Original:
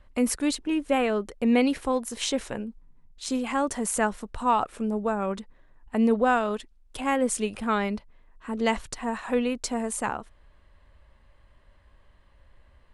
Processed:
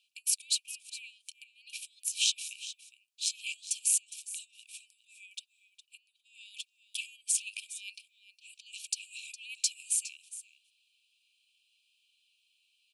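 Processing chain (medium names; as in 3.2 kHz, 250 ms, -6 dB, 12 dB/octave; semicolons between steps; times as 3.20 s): compressor with a negative ratio -29 dBFS, ratio -0.5; brick-wall FIR high-pass 2.3 kHz; on a send: delay 411 ms -14.5 dB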